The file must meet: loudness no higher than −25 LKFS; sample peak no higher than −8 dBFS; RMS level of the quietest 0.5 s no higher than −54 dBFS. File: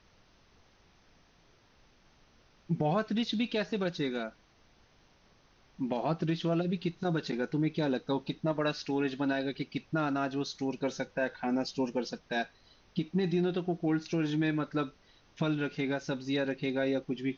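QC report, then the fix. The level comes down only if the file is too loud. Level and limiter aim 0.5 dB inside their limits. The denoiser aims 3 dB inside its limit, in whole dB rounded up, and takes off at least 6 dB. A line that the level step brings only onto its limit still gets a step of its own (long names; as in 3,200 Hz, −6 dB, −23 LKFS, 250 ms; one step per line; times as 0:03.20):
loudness −32.5 LKFS: in spec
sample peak −19.0 dBFS: in spec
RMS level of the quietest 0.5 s −64 dBFS: in spec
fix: no processing needed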